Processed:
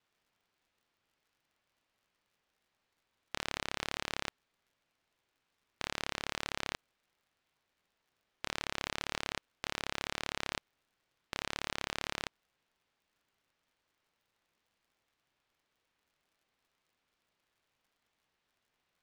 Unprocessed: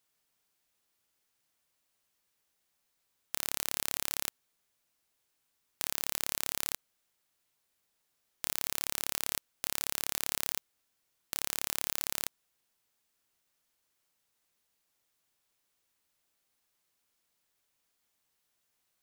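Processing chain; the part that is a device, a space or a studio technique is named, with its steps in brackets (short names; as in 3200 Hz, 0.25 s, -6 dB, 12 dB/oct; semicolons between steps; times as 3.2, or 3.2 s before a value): lo-fi chain (LPF 3300 Hz 12 dB/oct; wow and flutter; crackle); gain +3.5 dB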